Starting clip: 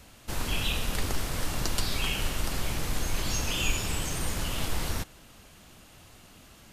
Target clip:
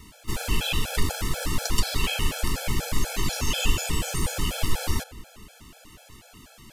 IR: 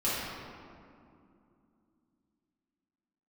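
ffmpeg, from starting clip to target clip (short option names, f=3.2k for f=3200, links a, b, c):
-filter_complex "[0:a]asplit=2[a][b];[b]asetrate=66075,aresample=44100,atempo=0.66742,volume=-17dB[c];[a][c]amix=inputs=2:normalize=0,asplit=2[d][e];[1:a]atrim=start_sample=2205[f];[e][f]afir=irnorm=-1:irlink=0,volume=-26.5dB[g];[d][g]amix=inputs=2:normalize=0,afftfilt=real='re*gt(sin(2*PI*4.1*pts/sr)*(1-2*mod(floor(b*sr/1024/440),2)),0)':imag='im*gt(sin(2*PI*4.1*pts/sr)*(1-2*mod(floor(b*sr/1024/440),2)),0)':win_size=1024:overlap=0.75,volume=6dB"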